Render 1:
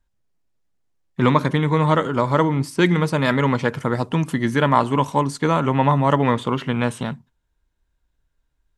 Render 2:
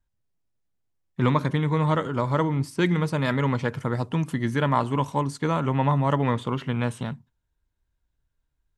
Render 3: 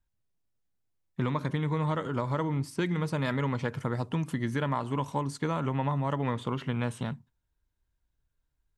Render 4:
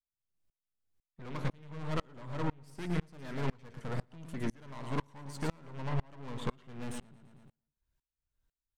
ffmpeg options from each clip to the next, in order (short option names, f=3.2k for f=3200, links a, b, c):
-af "equalizer=f=100:t=o:w=1.2:g=6,volume=-6.5dB"
-af "acompressor=threshold=-23dB:ratio=6,volume=-2.5dB"
-filter_complex "[0:a]aeval=exprs='(tanh(50.1*val(0)+0.75)-tanh(0.75))/50.1':c=same,asplit=2[a][b];[b]aecho=0:1:113|226|339|452|565:0.355|0.156|0.0687|0.0302|0.0133[c];[a][c]amix=inputs=2:normalize=0,aeval=exprs='val(0)*pow(10,-31*if(lt(mod(-2*n/s,1),2*abs(-2)/1000),1-mod(-2*n/s,1)/(2*abs(-2)/1000),(mod(-2*n/s,1)-2*abs(-2)/1000)/(1-2*abs(-2)/1000))/20)':c=same,volume=6.5dB"